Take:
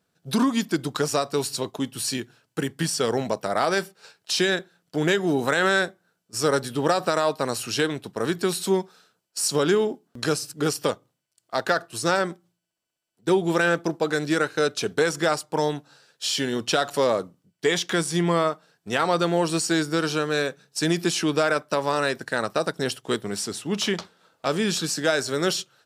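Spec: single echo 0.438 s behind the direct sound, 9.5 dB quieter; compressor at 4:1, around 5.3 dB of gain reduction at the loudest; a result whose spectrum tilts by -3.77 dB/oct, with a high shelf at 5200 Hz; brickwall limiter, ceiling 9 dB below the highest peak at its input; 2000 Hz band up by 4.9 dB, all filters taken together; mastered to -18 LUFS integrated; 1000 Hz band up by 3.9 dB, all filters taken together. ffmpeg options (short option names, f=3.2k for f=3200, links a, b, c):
-af "equalizer=f=1k:t=o:g=3.5,equalizer=f=2k:t=o:g=6,highshelf=f=5.2k:g=-6,acompressor=threshold=-20dB:ratio=4,alimiter=limit=-15.5dB:level=0:latency=1,aecho=1:1:438:0.335,volume=10dB"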